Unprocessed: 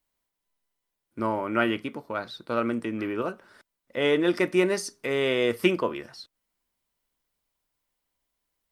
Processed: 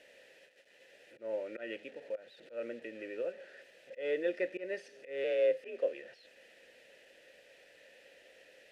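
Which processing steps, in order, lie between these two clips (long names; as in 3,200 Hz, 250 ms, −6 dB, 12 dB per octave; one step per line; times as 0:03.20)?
linear delta modulator 64 kbit/s, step −35.5 dBFS
0:05.24–0:05.93: frequency shifter +52 Hz
volume swells 154 ms
formant filter e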